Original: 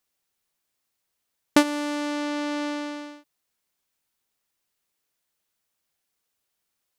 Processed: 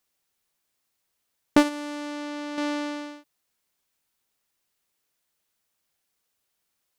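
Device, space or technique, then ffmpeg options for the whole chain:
saturation between pre-emphasis and de-emphasis: -filter_complex "[0:a]highshelf=f=2.1k:g=12,asoftclip=type=tanh:threshold=-3.5dB,highshelf=f=2.1k:g=-12,asettb=1/sr,asplit=3[a][b][c];[a]atrim=end=1.574[d];[b]atrim=start=1.57:end=2.58,asetpts=PTS-STARTPTS,afade=t=in:d=0.004:c=qsin,afade=t=out:st=1.006:d=0.004:c=qsin,agate=range=-7dB:threshold=-24dB:ratio=16:detection=peak[e];[c]atrim=start=2.576[f];[d][e]acrossfade=d=0.004:c1=hsin:c2=qsin[g];[g][f]acrossfade=d=0.004:c1=qsin:c2=hsin,volume=1.5dB"

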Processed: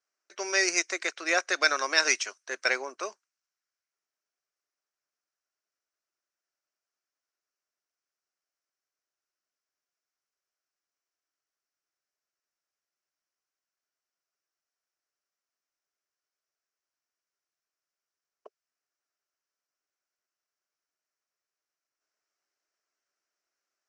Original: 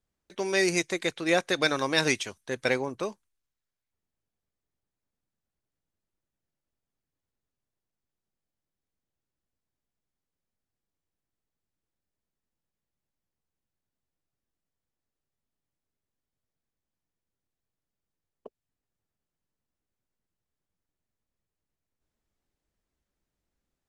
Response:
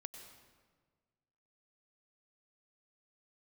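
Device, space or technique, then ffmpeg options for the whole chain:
phone speaker on a table: -af "highpass=f=450:w=0.5412,highpass=f=450:w=1.3066,equalizer=f=490:t=q:w=4:g=-9,equalizer=f=860:t=q:w=4:g=-7,equalizer=f=1.4k:t=q:w=4:g=5,equalizer=f=3.5k:t=q:w=4:g=-9,equalizer=f=5.6k:t=q:w=4:g=8,lowpass=f=7.4k:w=0.5412,lowpass=f=7.4k:w=1.3066,volume=2dB"

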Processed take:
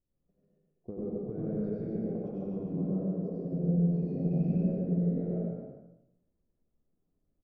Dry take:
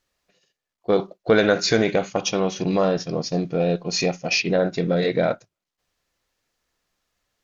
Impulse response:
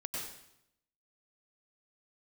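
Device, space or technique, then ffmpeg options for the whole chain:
television next door: -filter_complex "[0:a]asettb=1/sr,asplit=3[a][b][c];[a]atrim=end=3.044[d];[b]atrim=start=3.04:end=3.45,asetpts=PTS-STARTPTS,afade=t=in:d=0.004:c=qsin,afade=t=out:st=0.406:d=0.004:c=qsin,highpass=330[e];[c]atrim=start=3.446[f];[d][e]acrossfade=d=0.004:c1=hsin:c2=qsin[g];[g][f]acrossfade=d=0.004:c1=qsin:c2=hsin,acompressor=threshold=-31dB:ratio=5,lowpass=280[h];[1:a]atrim=start_sample=2205[i];[h][i]afir=irnorm=-1:irlink=0,asettb=1/sr,asplit=3[j][k][l];[j]atrim=end=4.174[m];[k]atrim=start=4.17:end=4.58,asetpts=PTS-STARTPTS,afade=t=in:d=0.004:c=qsin,afade=t=out:st=0.406:d=0.004:c=qsin,lowshelf=f=220:g=10.5[n];[l]atrim=start=4.576[o];[m][n]acrossfade=d=0.004:c1=hsin:c2=qsin[p];[p][o]acrossfade=d=0.004:c1=qsin:c2=hsin,aecho=1:1:86|139|144|268|392|415:0.631|0.562|0.631|0.501|0.141|0.188"

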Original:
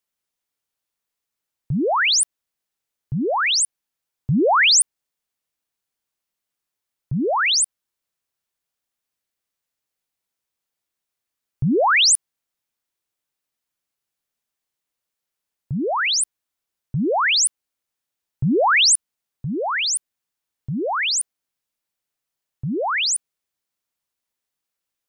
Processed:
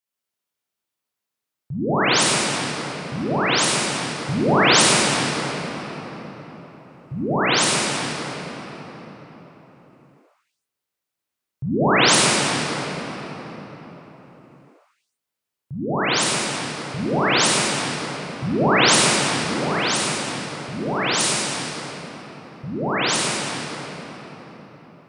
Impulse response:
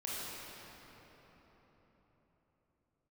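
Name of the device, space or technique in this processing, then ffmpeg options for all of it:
cathedral: -filter_complex "[0:a]highpass=71[a];[1:a]atrim=start_sample=2205[b];[a][b]afir=irnorm=-1:irlink=0,asplit=3[c][d][e];[c]afade=t=out:st=21.19:d=0.02[f];[d]adynamicequalizer=threshold=0.0158:dfrequency=3800:dqfactor=0.7:tfrequency=3800:tqfactor=0.7:attack=5:release=100:ratio=0.375:range=2:mode=boostabove:tftype=highshelf,afade=t=in:st=21.19:d=0.02,afade=t=out:st=22.94:d=0.02[g];[e]afade=t=in:st=22.94:d=0.02[h];[f][g][h]amix=inputs=3:normalize=0,volume=-1.5dB"

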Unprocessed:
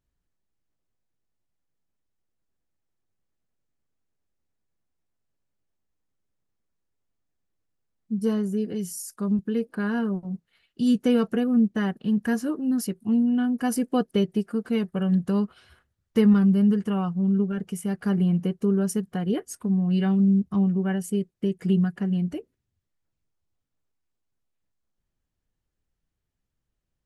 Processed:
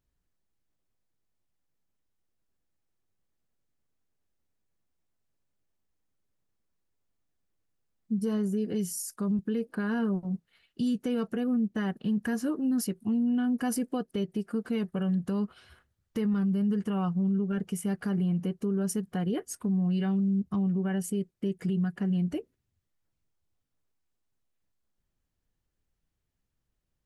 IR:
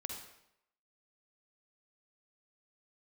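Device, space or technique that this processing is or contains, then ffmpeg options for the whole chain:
stacked limiters: -af "alimiter=limit=-16.5dB:level=0:latency=1:release=485,alimiter=limit=-22dB:level=0:latency=1:release=85"

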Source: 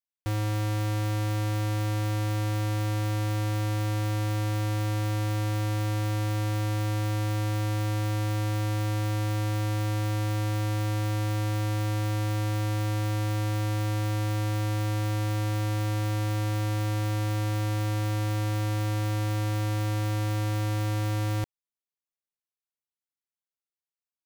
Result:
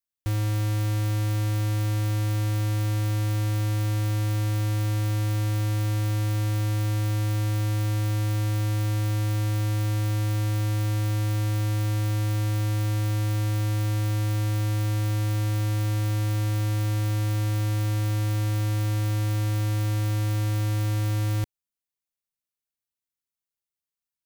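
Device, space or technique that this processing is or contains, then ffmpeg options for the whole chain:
smiley-face EQ: -af "lowshelf=f=140:g=5.5,equalizer=f=760:t=o:w=1.8:g=-4,highshelf=f=8.2k:g=5"

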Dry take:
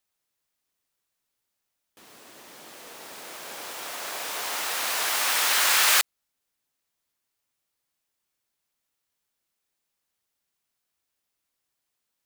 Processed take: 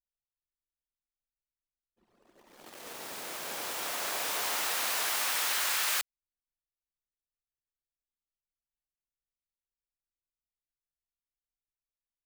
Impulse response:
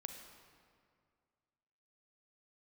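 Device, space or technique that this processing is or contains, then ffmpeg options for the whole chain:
ASMR close-microphone chain: -af "anlmdn=0.0631,lowshelf=f=140:g=5,acompressor=threshold=-29dB:ratio=5,highshelf=f=11k:g=3"

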